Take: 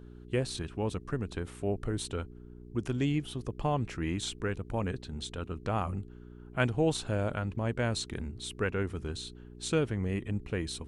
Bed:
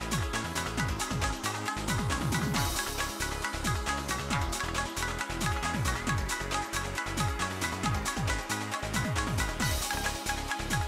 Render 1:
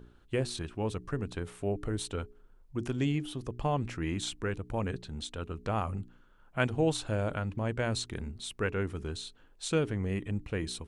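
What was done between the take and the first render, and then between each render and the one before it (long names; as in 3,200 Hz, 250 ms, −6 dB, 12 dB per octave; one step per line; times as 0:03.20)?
hum removal 60 Hz, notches 7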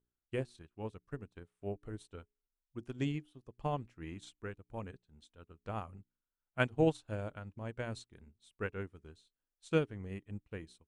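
expander for the loud parts 2.5 to 1, over −47 dBFS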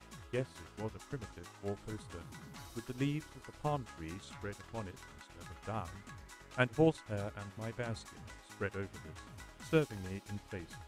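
mix in bed −21.5 dB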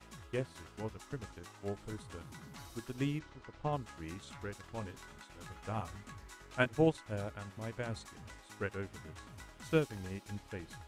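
0:03.19–0:03.73: high-frequency loss of the air 130 metres
0:04.80–0:06.66: double-tracking delay 19 ms −7 dB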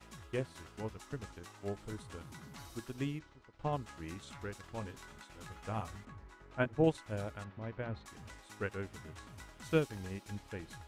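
0:02.78–0:03.59: fade out, to −12 dB
0:06.05–0:06.84: low-pass filter 1,200 Hz 6 dB per octave
0:07.44–0:08.06: high-frequency loss of the air 310 metres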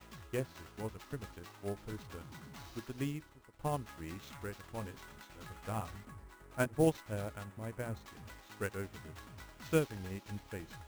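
sample-rate reduction 10,000 Hz, jitter 20%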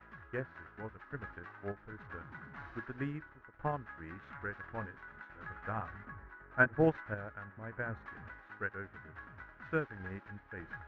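low-pass with resonance 1,600 Hz, resonance Q 4.5
sample-and-hold tremolo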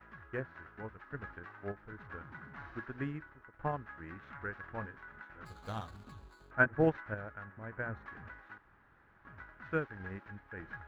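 0:05.45–0:06.51: running median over 25 samples
0:08.58–0:09.25: fill with room tone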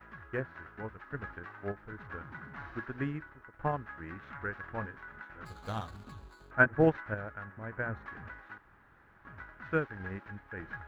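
level +3.5 dB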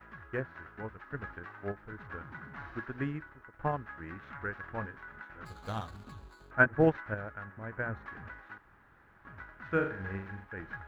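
0:09.67–0:10.45: flutter between parallel walls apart 7.1 metres, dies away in 0.48 s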